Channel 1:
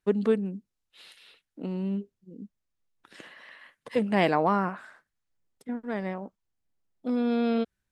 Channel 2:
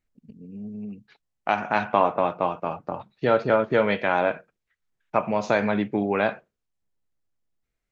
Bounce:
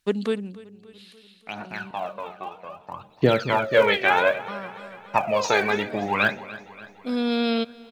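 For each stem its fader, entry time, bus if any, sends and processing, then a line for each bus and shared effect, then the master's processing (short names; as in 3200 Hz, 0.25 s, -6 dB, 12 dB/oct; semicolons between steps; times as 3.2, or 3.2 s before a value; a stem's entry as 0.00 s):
+1.5 dB, 0.00 s, muted 1.91–4.48, no send, echo send -23 dB, bell 3900 Hz +5 dB 1.2 oct; auto duck -14 dB, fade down 1.15 s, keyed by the second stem
2.73 s -15 dB -> 3.14 s -2 dB, 0.00 s, no send, echo send -17.5 dB, de-hum 78.07 Hz, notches 12; phaser 0.62 Hz, delay 2.7 ms, feedback 73%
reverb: off
echo: feedback echo 0.289 s, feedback 56%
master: high shelf 2000 Hz +11 dB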